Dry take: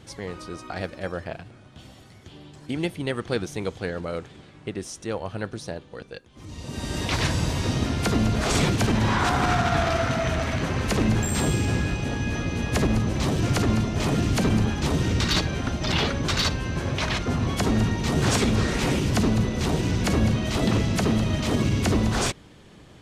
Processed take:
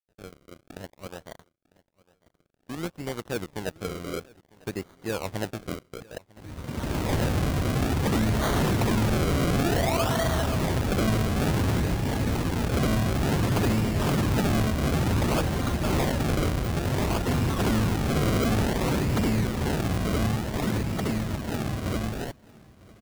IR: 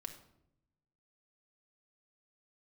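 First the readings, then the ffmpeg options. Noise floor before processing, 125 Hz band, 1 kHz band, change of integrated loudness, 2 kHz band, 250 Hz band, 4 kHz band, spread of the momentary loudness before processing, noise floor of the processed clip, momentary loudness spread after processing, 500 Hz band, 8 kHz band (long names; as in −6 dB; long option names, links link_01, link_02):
−49 dBFS, −1.5 dB, −2.0 dB, −2.0 dB, −4.0 dB, −2.0 dB, −5.5 dB, 13 LU, −69 dBFS, 12 LU, −1.0 dB, −4.5 dB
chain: -af "dynaudnorm=framelen=650:gausssize=13:maxgain=14dB,aresample=11025,aeval=exprs='sgn(val(0))*max(abs(val(0))-0.0126,0)':channel_layout=same,aresample=44100,acrusher=samples=34:mix=1:aa=0.000001:lfo=1:lforange=34:lforate=0.56,asoftclip=type=hard:threshold=-13.5dB,aecho=1:1:950|1900|2850:0.0631|0.0278|0.0122,volume=-7dB"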